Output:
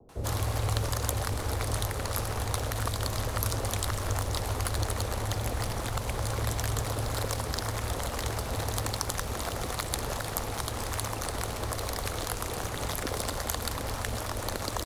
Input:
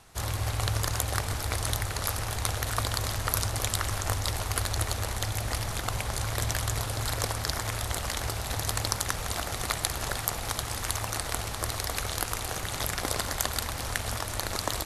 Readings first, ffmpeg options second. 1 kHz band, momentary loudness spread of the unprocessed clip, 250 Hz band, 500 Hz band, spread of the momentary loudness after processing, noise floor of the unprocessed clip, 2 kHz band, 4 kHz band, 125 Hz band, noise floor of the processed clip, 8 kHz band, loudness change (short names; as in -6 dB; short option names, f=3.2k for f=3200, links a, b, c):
-0.5 dB, 3 LU, +2.0 dB, +2.0 dB, 3 LU, -36 dBFS, -3.5 dB, -3.5 dB, 0.0 dB, -36 dBFS, -3.5 dB, -1.5 dB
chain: -filter_complex "[0:a]acrossover=split=290|450|2300[a][b][c][d];[d]acrusher=bits=3:mode=log:mix=0:aa=0.000001[e];[a][b][c][e]amix=inputs=4:normalize=0,acrossover=split=150|3000[f][g][h];[g]acompressor=threshold=-40dB:ratio=2.5[i];[f][i][h]amix=inputs=3:normalize=0,equalizer=f=250:t=o:w=1:g=6,equalizer=f=500:t=o:w=1:g=10,equalizer=f=1k:t=o:w=1:g=4,acrossover=split=580[j][k];[k]adelay=90[l];[j][l]amix=inputs=2:normalize=0,adynamicequalizer=threshold=0.00447:dfrequency=3000:dqfactor=0.7:tfrequency=3000:tqfactor=0.7:attack=5:release=100:ratio=0.375:range=2:mode=cutabove:tftype=highshelf"